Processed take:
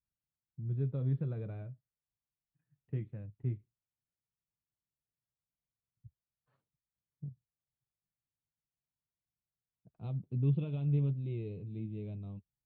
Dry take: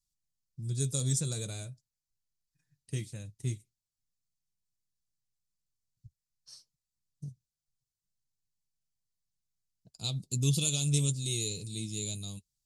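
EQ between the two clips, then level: Gaussian low-pass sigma 4.5 samples; high-pass 50 Hz; distance through air 270 m; -1.0 dB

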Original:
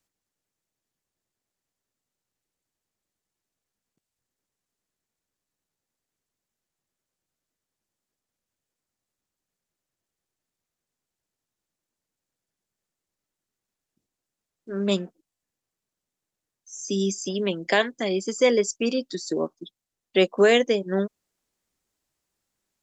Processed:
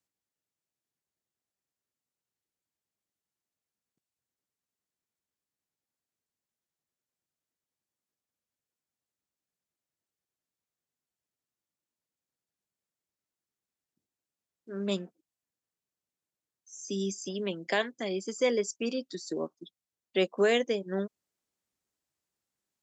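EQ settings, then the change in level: high-pass 63 Hz; -7.5 dB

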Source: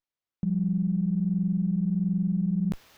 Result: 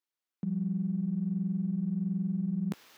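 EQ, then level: high-pass 230 Hz 12 dB/octave; peaking EQ 630 Hz -4 dB 0.71 oct; 0.0 dB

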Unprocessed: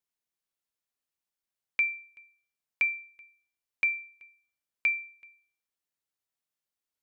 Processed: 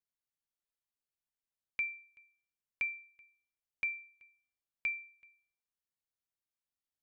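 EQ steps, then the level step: bass shelf 150 Hz +9.5 dB; -8.5 dB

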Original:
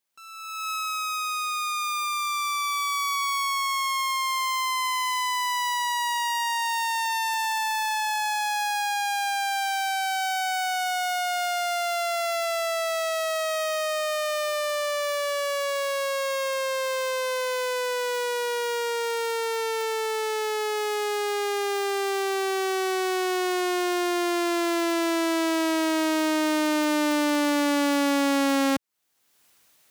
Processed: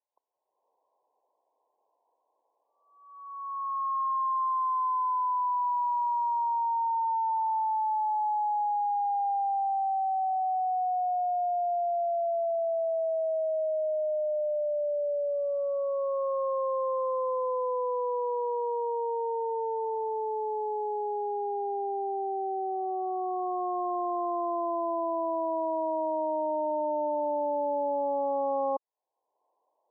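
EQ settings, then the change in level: high-pass 480 Hz 24 dB/octave; brick-wall FIR low-pass 1.1 kHz; distance through air 240 m; +1.5 dB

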